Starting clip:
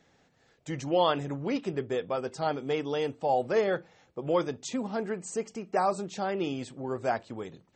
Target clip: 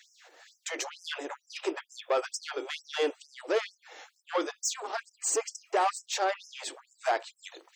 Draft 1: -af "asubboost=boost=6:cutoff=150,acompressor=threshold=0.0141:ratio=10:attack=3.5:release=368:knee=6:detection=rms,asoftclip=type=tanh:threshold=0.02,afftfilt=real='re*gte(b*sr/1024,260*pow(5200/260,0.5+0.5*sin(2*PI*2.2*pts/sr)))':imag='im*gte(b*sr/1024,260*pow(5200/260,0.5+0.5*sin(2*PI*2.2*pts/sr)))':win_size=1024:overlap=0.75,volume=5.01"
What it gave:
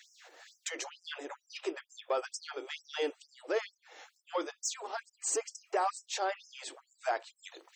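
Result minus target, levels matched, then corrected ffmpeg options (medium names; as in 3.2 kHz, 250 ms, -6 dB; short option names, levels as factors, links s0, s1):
compression: peak gain reduction +7 dB
-af "asubboost=boost=6:cutoff=150,acompressor=threshold=0.0355:ratio=10:attack=3.5:release=368:knee=6:detection=rms,asoftclip=type=tanh:threshold=0.02,afftfilt=real='re*gte(b*sr/1024,260*pow(5200/260,0.5+0.5*sin(2*PI*2.2*pts/sr)))':imag='im*gte(b*sr/1024,260*pow(5200/260,0.5+0.5*sin(2*PI*2.2*pts/sr)))':win_size=1024:overlap=0.75,volume=5.01"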